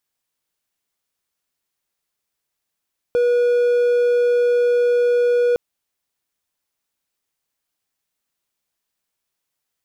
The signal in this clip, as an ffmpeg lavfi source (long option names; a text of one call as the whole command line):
ffmpeg -f lavfi -i "aevalsrc='0.266*(1-4*abs(mod(484*t+0.25,1)-0.5))':duration=2.41:sample_rate=44100" out.wav